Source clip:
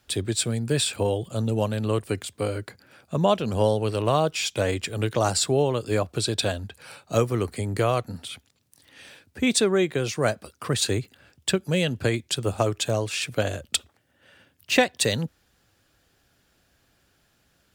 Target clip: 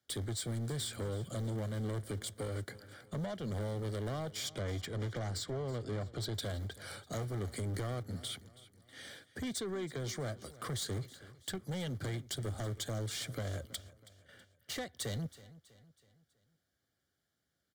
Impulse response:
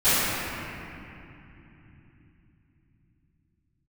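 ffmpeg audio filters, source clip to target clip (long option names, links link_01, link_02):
-filter_complex "[0:a]acrossover=split=110[link_01][link_02];[link_01]acrusher=bits=4:mode=log:mix=0:aa=0.000001[link_03];[link_02]acompressor=threshold=-30dB:ratio=6[link_04];[link_03][link_04]amix=inputs=2:normalize=0,highpass=frequency=62:width=0.5412,highpass=frequency=62:width=1.3066,asettb=1/sr,asplit=3[link_05][link_06][link_07];[link_05]atrim=end=4.494[link_08];[link_06]atrim=start=4.49:end=6.34,asetpts=PTS-STARTPTS,afade=type=in:duration=0.004:curve=qsin,afade=type=out:start_time=1.846:duration=0.004:curve=qsin,adynamicsmooth=sensitivity=2.5:basefreq=5700[link_09];[link_07]atrim=start=6.336[link_10];[link_08][link_09]acrossfade=duration=0.004:curve1=hsin:curve2=qsin[link_11];[link_11][link_10]acrossfade=duration=0.004:curve1=qsin:curve2=hsin,asettb=1/sr,asplit=3[link_12][link_13][link_14];[link_12]atrim=end=9.604[link_15];[link_13]atrim=start=9.6:end=10.3,asetpts=PTS-STARTPTS,afade=type=in:duration=0.004:curve=qsin,afade=type=out:start_time=0.696:duration=0.004:curve=qsin,equalizer=frequency=11000:width=3.7:gain=-14[link_16];[link_14]atrim=start=10.296[link_17];[link_15][link_16]acrossfade=duration=0.004:curve1=hsin:curve2=qsin[link_18];[link_18][link_17]acrossfade=duration=0.004:curve1=qsin:curve2=hsin,asoftclip=type=tanh:threshold=-33dB,asuperstop=centerf=2600:order=4:qfactor=4.5,agate=range=-17dB:threshold=-55dB:ratio=16:detection=peak,equalizer=frequency=950:width=4.8:gain=-9,aecho=1:1:324|648|972|1296:0.119|0.0547|0.0251|0.0116,volume=-1dB"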